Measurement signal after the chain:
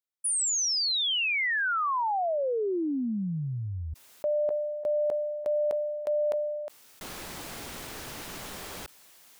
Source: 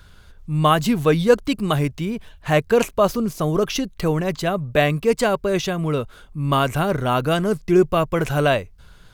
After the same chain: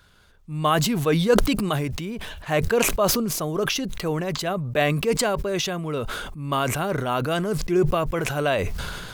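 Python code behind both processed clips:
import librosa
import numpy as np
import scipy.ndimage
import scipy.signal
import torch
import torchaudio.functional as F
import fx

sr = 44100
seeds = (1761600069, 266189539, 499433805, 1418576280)

y = fx.low_shelf(x, sr, hz=110.0, db=-11.0)
y = fx.sustainer(y, sr, db_per_s=29.0)
y = y * 10.0 ** (-4.5 / 20.0)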